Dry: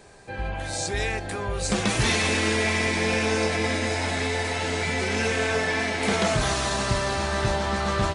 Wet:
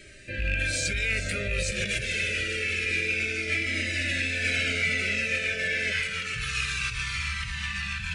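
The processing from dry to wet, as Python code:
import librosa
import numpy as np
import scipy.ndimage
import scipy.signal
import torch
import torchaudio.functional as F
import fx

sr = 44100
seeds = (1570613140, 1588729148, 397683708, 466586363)

y = fx.rattle_buzz(x, sr, strikes_db=-26.0, level_db=-26.0)
y = fx.over_compress(y, sr, threshold_db=-29.0, ratio=-1.0)
y = fx.peak_eq(y, sr, hz=2500.0, db=13.5, octaves=0.67)
y = 10.0 ** (-11.0 / 20.0) * np.tanh(y / 10.0 ** (-11.0 / 20.0))
y = fx.ellip_bandstop(y, sr, low_hz=fx.steps((0.0, 600.0), (5.91, 170.0)), high_hz=1400.0, order=3, stop_db=60)
y = fx.echo_feedback(y, sr, ms=431, feedback_pct=49, wet_db=-11.5)
y = fx.comb_cascade(y, sr, direction='falling', hz=0.27)
y = F.gain(torch.from_numpy(y), 1.5).numpy()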